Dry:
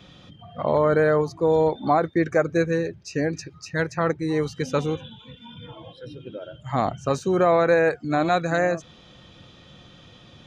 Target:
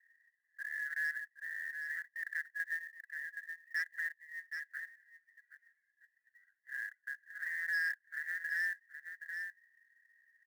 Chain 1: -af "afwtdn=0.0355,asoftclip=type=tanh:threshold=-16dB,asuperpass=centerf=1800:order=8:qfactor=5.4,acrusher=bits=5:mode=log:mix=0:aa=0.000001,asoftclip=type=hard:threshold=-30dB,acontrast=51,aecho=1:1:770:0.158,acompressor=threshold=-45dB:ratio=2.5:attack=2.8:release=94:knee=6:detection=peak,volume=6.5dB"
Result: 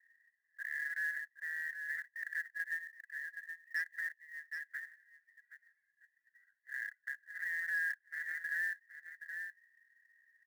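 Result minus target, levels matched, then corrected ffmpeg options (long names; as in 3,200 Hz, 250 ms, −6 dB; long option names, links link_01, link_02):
soft clipping: distortion +10 dB
-af "afwtdn=0.0355,asoftclip=type=tanh:threshold=-9dB,asuperpass=centerf=1800:order=8:qfactor=5.4,acrusher=bits=5:mode=log:mix=0:aa=0.000001,asoftclip=type=hard:threshold=-30dB,acontrast=51,aecho=1:1:770:0.158,acompressor=threshold=-45dB:ratio=2.5:attack=2.8:release=94:knee=6:detection=peak,volume=6.5dB"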